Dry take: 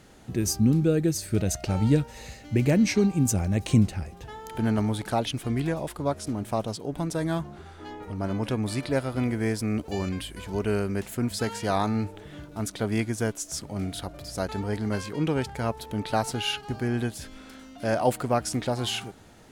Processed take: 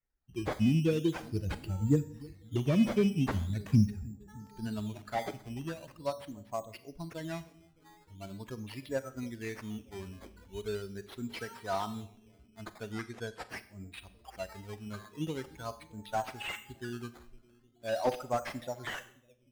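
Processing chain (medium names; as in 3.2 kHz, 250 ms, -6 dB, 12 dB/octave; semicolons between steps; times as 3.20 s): expander on every frequency bin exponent 2; bucket-brigade echo 306 ms, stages 1024, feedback 67%, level -21 dB; decimation with a swept rate 11×, swing 100% 0.42 Hz; 12.92–13.49 s: low-pass 9.2 kHz 12 dB/octave; Schroeder reverb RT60 0.55 s, combs from 30 ms, DRR 13.5 dB; slew-rate limiter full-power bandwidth 59 Hz; trim -2 dB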